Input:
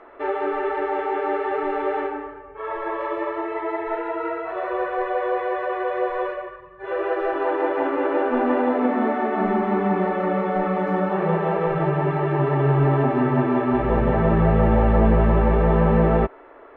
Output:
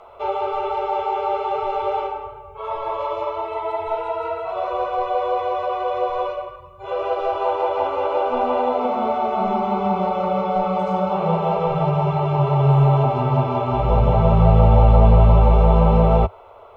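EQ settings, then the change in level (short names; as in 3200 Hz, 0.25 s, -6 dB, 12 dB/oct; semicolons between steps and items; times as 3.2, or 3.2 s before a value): bell 90 Hz +12.5 dB 0.88 oct; high shelf 2000 Hz +11.5 dB; fixed phaser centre 730 Hz, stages 4; +3.0 dB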